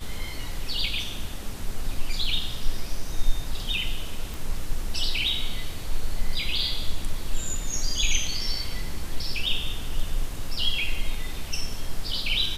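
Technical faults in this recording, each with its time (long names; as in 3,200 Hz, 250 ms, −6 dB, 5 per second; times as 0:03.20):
0:04.34: click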